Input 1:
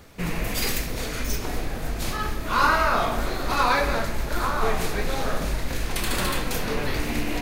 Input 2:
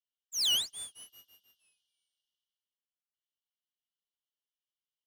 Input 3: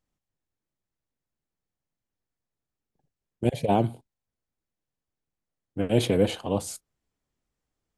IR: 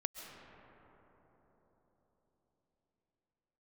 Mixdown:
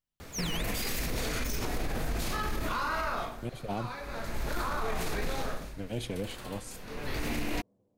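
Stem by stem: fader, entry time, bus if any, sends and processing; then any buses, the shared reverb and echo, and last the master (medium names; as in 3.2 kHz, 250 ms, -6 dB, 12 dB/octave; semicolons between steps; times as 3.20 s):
+3.0 dB, 0.20 s, no send, auto duck -23 dB, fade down 0.50 s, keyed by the third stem
-3.0 dB, 0.00 s, no send, none
-10.5 dB, 0.00 s, send -18 dB, peaking EQ 440 Hz -4.5 dB 1.9 oct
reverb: on, RT60 4.5 s, pre-delay 95 ms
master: peak limiter -23.5 dBFS, peak gain reduction 18.5 dB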